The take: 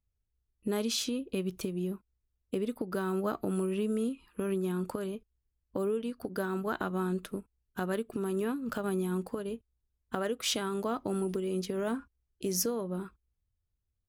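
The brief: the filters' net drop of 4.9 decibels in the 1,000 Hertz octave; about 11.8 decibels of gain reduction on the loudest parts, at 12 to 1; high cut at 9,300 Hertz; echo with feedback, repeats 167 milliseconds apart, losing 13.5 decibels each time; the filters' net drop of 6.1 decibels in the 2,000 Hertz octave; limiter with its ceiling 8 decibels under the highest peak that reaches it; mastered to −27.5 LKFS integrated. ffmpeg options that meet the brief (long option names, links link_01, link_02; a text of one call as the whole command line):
ffmpeg -i in.wav -af "lowpass=9300,equalizer=frequency=1000:width_type=o:gain=-4.5,equalizer=frequency=2000:width_type=o:gain=-7,acompressor=threshold=-40dB:ratio=12,alimiter=level_in=13.5dB:limit=-24dB:level=0:latency=1,volume=-13.5dB,aecho=1:1:167|334:0.211|0.0444,volume=19.5dB" out.wav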